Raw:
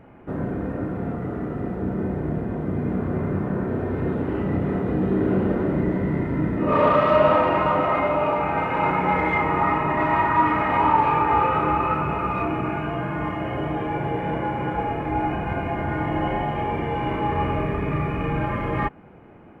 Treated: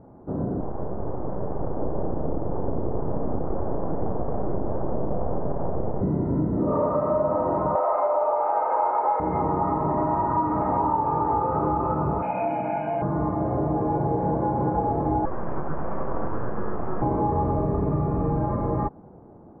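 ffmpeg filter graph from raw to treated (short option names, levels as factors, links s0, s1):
-filter_complex "[0:a]asettb=1/sr,asplit=3[s0][s1][s2];[s0]atrim=end=0.604[s3];[s1]atrim=start=0.6:end=6.01,asetpts=PTS-STARTPTS,afade=t=in:d=0.004:c=qsin,afade=t=out:st=5.406:d=0.004:c=qsin,aeval=exprs='abs(val(0))':c=same,highshelf=f=3300:g=-5[s4];[s2]atrim=start=6.006[s5];[s3][s4]acrossfade=d=0.004:c1=hsin:c2=qsin[s6];[s6][s5]acrossfade=d=0.004:c1=qsin:c2=hsin,asettb=1/sr,asplit=3[s7][s8][s9];[s7]atrim=end=7.754[s10];[s8]atrim=start=7.75:end=9.2,asetpts=PTS-STARTPTS,afade=t=in:d=0.004:c=qsin,afade=t=out:st=1.446:d=0.004:c=qsin,highpass=f=530:w=0.5412,highpass=f=530:w=1.3066,acontrast=77[s11];[s9]atrim=start=9.196[s12];[s10][s11]acrossfade=d=0.004:c1=hsin:c2=qsin[s13];[s13][s12]acrossfade=d=0.004:c1=qsin:c2=hsin,asettb=1/sr,asplit=3[s14][s15][s16];[s14]atrim=end=12.224[s17];[s15]atrim=start=12.22:end=13.02,asetpts=PTS-STARTPTS,afade=t=in:d=0.004:c=qsin,afade=t=out:st=0.796:d=0.004:c=qsin,highpass=340,highshelf=f=1800:t=q:w=3:g=11.5,aecho=1:1:1.3:0.84,atrim=end_sample=35280[s18];[s16]atrim=start=13.016[s19];[s17][s18]acrossfade=d=0.004:c1=hsin:c2=qsin[s20];[s20][s19]acrossfade=d=0.004:c1=qsin:c2=hsin,asettb=1/sr,asplit=3[s21][s22][s23];[s21]atrim=end=15.254[s24];[s22]atrim=start=15.25:end=17.02,asetpts=PTS-STARTPTS,afade=t=in:d=0.004:c=qsin,afade=t=out:st=1.766:d=0.004:c=qsin,highpass=320,aeval=exprs='abs(val(0))':c=same[s25];[s23]atrim=start=17.016[s26];[s24][s25]acrossfade=d=0.004:c1=hsin:c2=qsin[s27];[s27][s26]acrossfade=d=0.004:c1=qsin:c2=hsin,dynaudnorm=f=350:g=9:m=2.37,lowpass=f=1000:w=0.5412,lowpass=f=1000:w=1.3066,acompressor=threshold=0.1:ratio=6"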